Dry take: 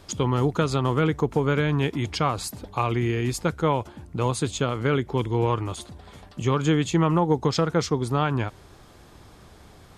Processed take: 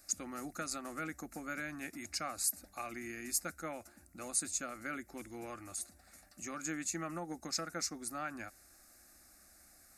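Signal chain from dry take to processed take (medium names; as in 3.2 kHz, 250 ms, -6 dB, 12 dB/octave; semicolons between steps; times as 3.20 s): pre-emphasis filter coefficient 0.9; static phaser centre 650 Hz, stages 8; trim +2.5 dB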